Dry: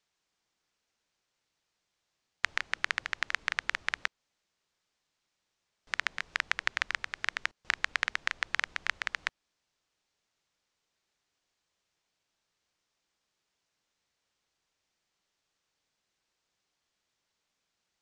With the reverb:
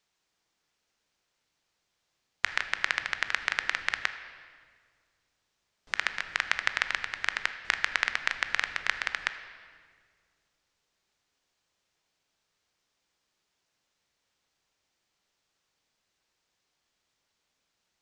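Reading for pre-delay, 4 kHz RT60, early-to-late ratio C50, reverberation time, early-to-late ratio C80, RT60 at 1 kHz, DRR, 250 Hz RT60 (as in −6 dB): 19 ms, 1.4 s, 10.5 dB, 1.9 s, 11.5 dB, 1.7 s, 9.0 dB, 2.3 s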